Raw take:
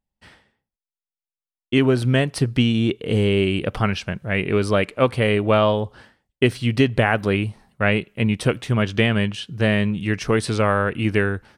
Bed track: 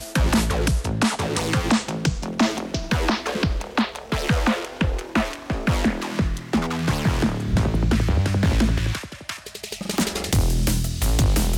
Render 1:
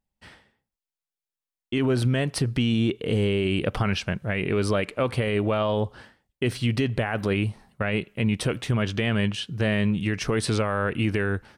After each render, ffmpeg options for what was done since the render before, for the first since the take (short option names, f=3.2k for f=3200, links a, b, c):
-af "alimiter=limit=-15dB:level=0:latency=1:release=41"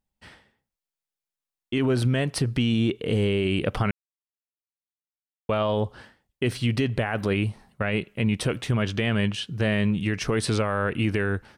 -filter_complex "[0:a]asplit=3[a][b][c];[a]atrim=end=3.91,asetpts=PTS-STARTPTS,afade=t=out:st=3.906:d=0.004:c=hsin[d];[b]atrim=start=3.91:end=5.49,asetpts=PTS-STARTPTS,volume=0[e];[c]atrim=start=5.49,asetpts=PTS-STARTPTS,afade=t=in:d=0.004:c=hsin[f];[d][e][f]concat=n=3:v=0:a=1"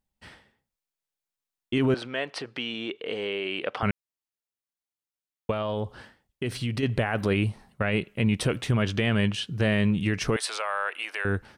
-filter_complex "[0:a]asettb=1/sr,asplit=3[a][b][c];[a]atrim=end=1.944[d];[b]atrim=start=1.94:end=3.83,asetpts=PTS-STARTPTS,afade=t=in:d=0.004:c=qsin,afade=t=out:st=1.886:d=0.004:c=qsin,highpass=520,lowpass=4.1k[e];[c]atrim=start=3.826[f];[d][e]acrossfade=d=0.004:c1=hsin:c2=qsin[g];[g][f]acrossfade=d=0.004:c1=qsin:c2=hsin,asettb=1/sr,asplit=3[h][i][j];[h]atrim=end=5.514[k];[i]atrim=start=5.51:end=6.83,asetpts=PTS-STARTPTS,afade=t=in:d=0.004:c=qsin,afade=t=out:st=1.316:d=0.004:c=qsin,acompressor=threshold=-29dB:ratio=2:attack=3.2:release=140:knee=1:detection=peak[l];[j]atrim=start=6.826[m];[k][l]acrossfade=d=0.004:c1=hsin:c2=qsin[n];[n][m]acrossfade=d=0.004:c1=qsin:c2=hsin,asettb=1/sr,asplit=3[o][p][q];[o]atrim=end=10.364[r];[p]atrim=start=10.36:end=11.25,asetpts=PTS-STARTPTS,afade=t=in:d=0.004:c=qsin,afade=t=out:st=0.886:d=0.004:c=qsin,highpass=f=670:w=0.5412,highpass=f=670:w=1.3066[s];[q]atrim=start=11.246[t];[r][s]acrossfade=d=0.004:c1=hsin:c2=qsin[u];[u][t]acrossfade=d=0.004:c1=qsin:c2=hsin"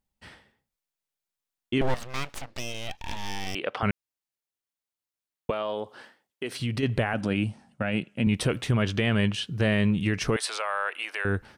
-filter_complex "[0:a]asettb=1/sr,asplit=3[a][b][c];[a]atrim=end=1.814[d];[b]atrim=start=1.81:end=3.55,asetpts=PTS-STARTPTS,afade=t=in:d=0.004:c=qsin,afade=t=out:st=1.736:d=0.004:c=qsin,aeval=exprs='abs(val(0))':c=same[e];[c]atrim=start=3.546[f];[d][e]acrossfade=d=0.004:c1=hsin:c2=qsin[g];[g][f]acrossfade=d=0.004:c1=qsin:c2=hsin,asettb=1/sr,asplit=3[h][i][j];[h]atrim=end=5.504[k];[i]atrim=start=5.5:end=6.6,asetpts=PTS-STARTPTS,afade=t=in:d=0.004:c=qsin,afade=t=out:st=1.096:d=0.004:c=qsin,highpass=310[l];[j]atrim=start=6.596[m];[k][l]acrossfade=d=0.004:c1=hsin:c2=qsin[n];[n][m]acrossfade=d=0.004:c1=qsin:c2=hsin,asettb=1/sr,asplit=3[o][p][q];[o]atrim=end=7.134[r];[p]atrim=start=7.13:end=8.27,asetpts=PTS-STARTPTS,afade=t=in:d=0.004:c=qsin,afade=t=out:st=1.136:d=0.004:c=qsin,highpass=120,equalizer=f=250:t=q:w=4:g=5,equalizer=f=410:t=q:w=4:g=-10,equalizer=f=1.1k:t=q:w=4:g=-8,equalizer=f=2k:t=q:w=4:g=-6,equalizer=f=4k:t=q:w=4:g=-7,lowpass=f=9.3k:w=0.5412,lowpass=f=9.3k:w=1.3066[s];[q]atrim=start=8.266[t];[r][s]acrossfade=d=0.004:c1=hsin:c2=qsin[u];[u][t]acrossfade=d=0.004:c1=qsin:c2=hsin"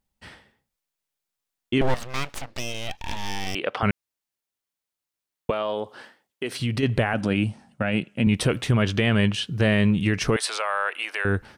-af "volume=3.5dB"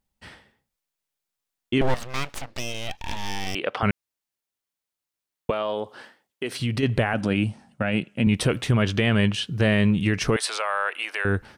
-af anull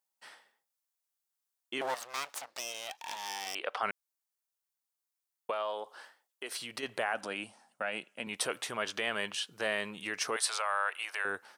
-af "highpass=890,equalizer=f=2.5k:t=o:w=2:g=-8.5"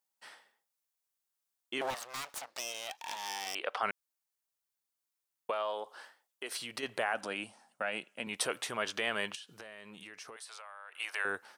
-filter_complex "[0:a]asettb=1/sr,asplit=3[a][b][c];[a]atrim=end=1.904[d];[b]atrim=start=1.9:end=2.44,asetpts=PTS-STARTPTS,afade=t=in:d=0.004:c=qsin,afade=t=out:st=0.536:d=0.004:c=qsin,aeval=exprs='0.0237*(abs(mod(val(0)/0.0237+3,4)-2)-1)':c=same[e];[c]atrim=start=2.436[f];[d][e]acrossfade=d=0.004:c1=hsin:c2=qsin[g];[g][f]acrossfade=d=0.004:c1=qsin:c2=hsin,asettb=1/sr,asplit=3[h][i][j];[h]atrim=end=9.354[k];[i]atrim=start=9.35:end=11,asetpts=PTS-STARTPTS,afade=t=in:d=0.004:c=qsin,afade=t=out:st=1.646:d=0.004:c=qsin,acompressor=threshold=-45dB:ratio=8:attack=3.2:release=140:knee=1:detection=peak[l];[j]atrim=start=10.996[m];[k][l]acrossfade=d=0.004:c1=hsin:c2=qsin[n];[n][m]acrossfade=d=0.004:c1=qsin:c2=hsin"